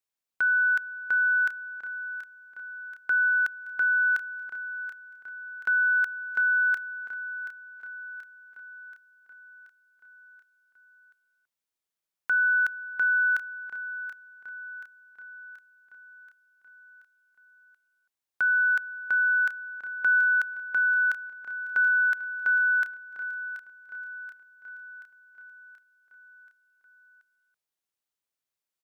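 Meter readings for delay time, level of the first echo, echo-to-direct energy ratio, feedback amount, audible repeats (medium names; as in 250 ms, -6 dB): 730 ms, -12.5 dB, -10.5 dB, 58%, 5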